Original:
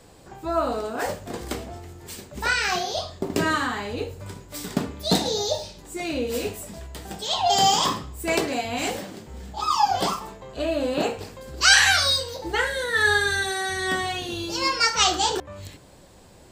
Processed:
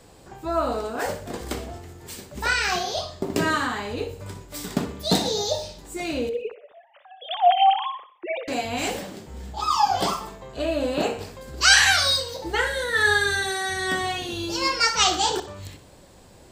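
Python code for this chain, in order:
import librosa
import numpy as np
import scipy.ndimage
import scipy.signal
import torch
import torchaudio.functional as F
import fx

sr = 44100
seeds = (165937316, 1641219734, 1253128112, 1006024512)

y = fx.sine_speech(x, sr, at=(6.29, 8.48))
y = fx.echo_feedback(y, sr, ms=62, feedback_pct=47, wet_db=-14.0)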